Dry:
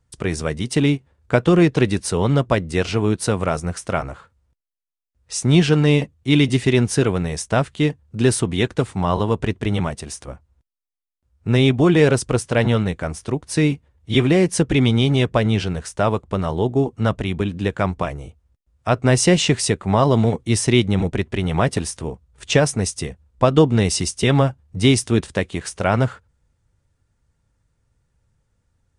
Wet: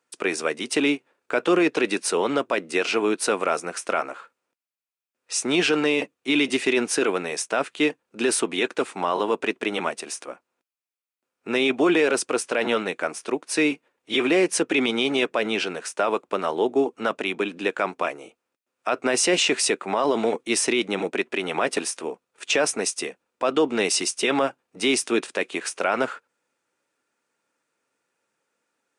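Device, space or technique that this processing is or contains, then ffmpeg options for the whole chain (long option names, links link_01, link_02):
laptop speaker: -af "highpass=frequency=290:width=0.5412,highpass=frequency=290:width=1.3066,equalizer=frequency=1400:width_type=o:width=0.56:gain=4,equalizer=frequency=2500:width_type=o:width=0.25:gain=7.5,alimiter=limit=-11.5dB:level=0:latency=1:release=16"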